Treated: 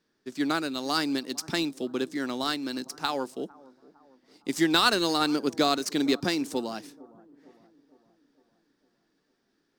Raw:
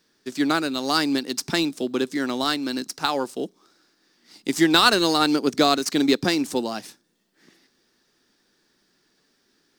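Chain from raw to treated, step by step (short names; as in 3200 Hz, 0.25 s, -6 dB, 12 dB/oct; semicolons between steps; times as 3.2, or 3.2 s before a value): on a send: analogue delay 0.457 s, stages 4096, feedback 51%, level -22 dB; on the sum: mismatched tape noise reduction decoder only; gain -5.5 dB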